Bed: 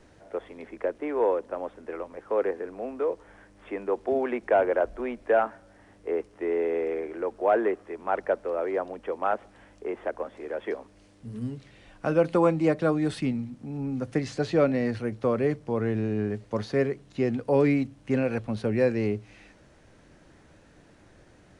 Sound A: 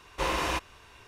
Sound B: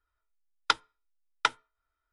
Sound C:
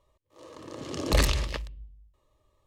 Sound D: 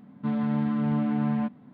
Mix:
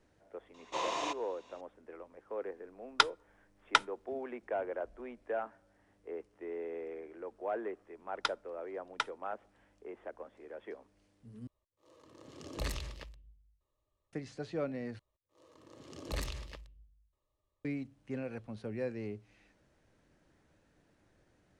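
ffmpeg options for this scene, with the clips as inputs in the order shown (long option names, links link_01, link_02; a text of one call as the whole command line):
ffmpeg -i bed.wav -i cue0.wav -i cue1.wav -i cue2.wav -filter_complex "[2:a]asplit=2[link_01][link_02];[3:a]asplit=2[link_03][link_04];[0:a]volume=-14dB[link_05];[1:a]highpass=230,equalizer=frequency=660:width_type=q:width=4:gain=9,equalizer=frequency=1000:width_type=q:width=4:gain=6,equalizer=frequency=1500:width_type=q:width=4:gain=-8,equalizer=frequency=3600:width_type=q:width=4:gain=6,equalizer=frequency=6700:width_type=q:width=4:gain=8,lowpass=frequency=7500:width=0.5412,lowpass=frequency=7500:width=1.3066[link_06];[link_05]asplit=3[link_07][link_08][link_09];[link_07]atrim=end=11.474[link_10];[link_03]atrim=end=2.66,asetpts=PTS-STARTPTS,volume=-14.5dB[link_11];[link_08]atrim=start=14.126:end=14.994[link_12];[link_04]atrim=end=2.66,asetpts=PTS-STARTPTS,volume=-15dB[link_13];[link_09]atrim=start=17.646[link_14];[link_06]atrim=end=1.07,asetpts=PTS-STARTPTS,volume=-9.5dB,afade=type=in:duration=0.004:curve=hsin,afade=type=out:start_time=1.066:duration=0.004:curve=hsin,adelay=540[link_15];[link_01]atrim=end=2.12,asetpts=PTS-STARTPTS,volume=-0.5dB,afade=type=in:duration=0.004:curve=hsin,afade=type=out:start_time=2.116:duration=0.004:curve=hsin,adelay=2300[link_16];[link_02]atrim=end=2.12,asetpts=PTS-STARTPTS,volume=-9dB,afade=type=in:duration=0.004:curve=hsin,afade=type=out:start_time=2.116:duration=0.004:curve=hsin,adelay=7550[link_17];[link_10][link_11]acrossfade=duration=0.004:curve1=hsin:curve2=hsin[link_18];[link_18][link_12]acrossfade=duration=0.004:curve1=hsin:curve2=hsin[link_19];[link_19][link_13]acrossfade=duration=0.004:curve1=hsin:curve2=hsin[link_20];[link_20][link_14]acrossfade=duration=0.004:curve1=hsin:curve2=hsin[link_21];[link_21][link_15][link_16][link_17]amix=inputs=4:normalize=0" out.wav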